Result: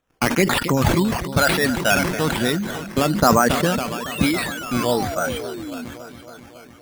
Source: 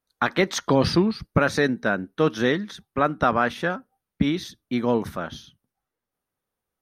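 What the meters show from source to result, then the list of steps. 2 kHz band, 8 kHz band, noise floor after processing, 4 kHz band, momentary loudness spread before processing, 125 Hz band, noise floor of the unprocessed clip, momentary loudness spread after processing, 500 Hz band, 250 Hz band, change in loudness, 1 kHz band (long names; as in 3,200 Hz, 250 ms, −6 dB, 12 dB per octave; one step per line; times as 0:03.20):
+4.5 dB, +11.5 dB, −45 dBFS, +7.0 dB, 11 LU, +5.0 dB, below −85 dBFS, 14 LU, +2.5 dB, +3.0 dB, +3.5 dB, +4.5 dB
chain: reverb reduction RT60 1.1 s
in parallel at −2.5 dB: compressor whose output falls as the input rises −25 dBFS, ratio −1
on the sum: phase shifter 0.3 Hz, delay 1.6 ms, feedback 51%
on a send: echo machine with several playback heads 277 ms, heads first and second, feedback 63%, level −16 dB
on the sum: sound drawn into the spectrogram fall, 0:03.93–0:05.85, 230–3,900 Hz −31 dBFS
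sample-and-hold swept by an LFO 9×, swing 60% 1.1 Hz
level that may fall only so fast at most 45 dB per second
level −1.5 dB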